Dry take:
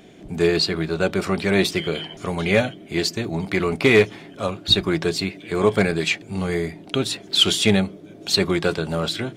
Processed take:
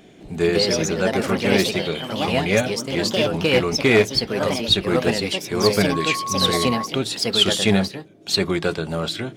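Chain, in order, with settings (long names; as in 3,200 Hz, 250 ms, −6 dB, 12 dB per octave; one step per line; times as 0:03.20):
delay with pitch and tempo change per echo 209 ms, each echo +3 semitones, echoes 2
0:05.91–0:06.85: steady tone 1,100 Hz −24 dBFS
0:07.84–0:08.29: expander for the loud parts 1.5 to 1, over −39 dBFS
level −1 dB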